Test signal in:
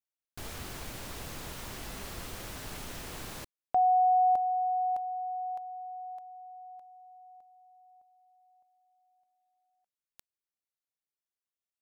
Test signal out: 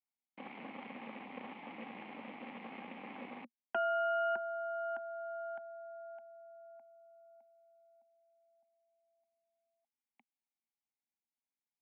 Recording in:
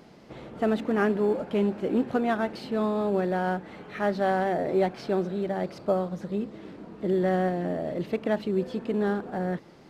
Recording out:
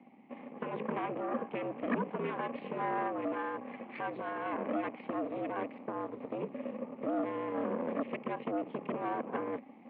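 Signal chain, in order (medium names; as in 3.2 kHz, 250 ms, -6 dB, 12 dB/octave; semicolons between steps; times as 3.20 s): in parallel at +1 dB: gain riding within 4 dB 0.5 s; on the sum: peak limiter -15 dBFS; vowel filter u; Chebyshev shaper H 5 -34 dB, 8 -10 dB, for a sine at -20.5 dBFS; mistuned SSB -67 Hz 300–3200 Hz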